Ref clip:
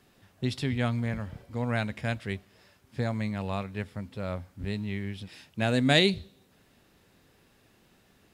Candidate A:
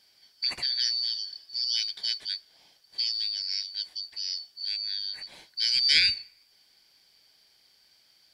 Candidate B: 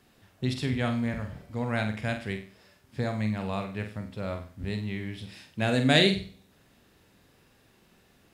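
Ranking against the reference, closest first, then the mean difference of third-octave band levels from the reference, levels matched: B, A; 2.0 dB, 17.0 dB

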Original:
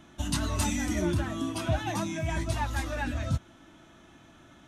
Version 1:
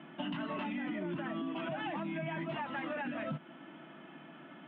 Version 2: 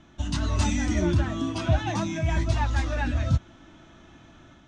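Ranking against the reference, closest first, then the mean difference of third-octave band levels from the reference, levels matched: 2, 1; 3.0 dB, 10.0 dB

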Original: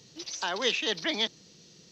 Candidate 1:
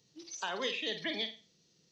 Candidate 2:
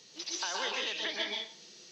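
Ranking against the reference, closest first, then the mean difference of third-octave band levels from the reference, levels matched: 1, 2; 5.0 dB, 7.0 dB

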